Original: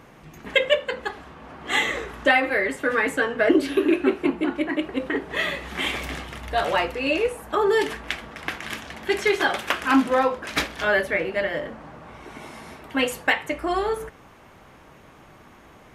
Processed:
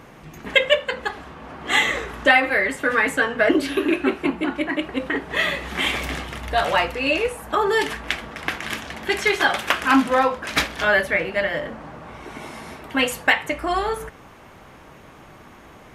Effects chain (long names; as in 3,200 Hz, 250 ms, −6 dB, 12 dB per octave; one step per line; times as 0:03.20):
dynamic equaliser 380 Hz, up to −6 dB, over −35 dBFS, Q 1.4
level +4 dB